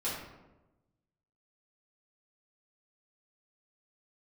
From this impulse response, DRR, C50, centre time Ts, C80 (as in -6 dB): -10.0 dB, 1.5 dB, 56 ms, 5.0 dB